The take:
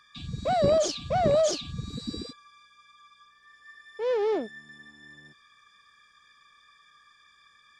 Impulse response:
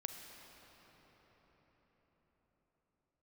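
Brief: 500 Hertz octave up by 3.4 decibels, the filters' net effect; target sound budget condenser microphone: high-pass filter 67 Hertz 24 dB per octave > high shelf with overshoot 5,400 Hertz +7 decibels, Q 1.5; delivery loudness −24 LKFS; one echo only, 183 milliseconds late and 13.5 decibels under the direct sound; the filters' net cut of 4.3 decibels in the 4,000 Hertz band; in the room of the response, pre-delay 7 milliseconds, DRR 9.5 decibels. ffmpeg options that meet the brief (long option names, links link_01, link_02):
-filter_complex "[0:a]equalizer=frequency=500:width_type=o:gain=4.5,equalizer=frequency=4000:width_type=o:gain=-5.5,aecho=1:1:183:0.211,asplit=2[link_01][link_02];[1:a]atrim=start_sample=2205,adelay=7[link_03];[link_02][link_03]afir=irnorm=-1:irlink=0,volume=-8dB[link_04];[link_01][link_04]amix=inputs=2:normalize=0,highpass=frequency=67:width=0.5412,highpass=frequency=67:width=1.3066,highshelf=frequency=5400:width_type=q:width=1.5:gain=7,volume=-0.5dB"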